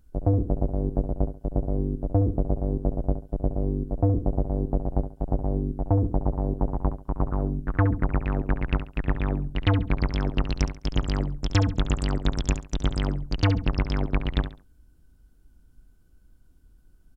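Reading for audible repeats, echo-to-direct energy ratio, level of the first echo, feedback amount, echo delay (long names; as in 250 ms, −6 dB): 3, −10.0 dB, −10.5 dB, 27%, 69 ms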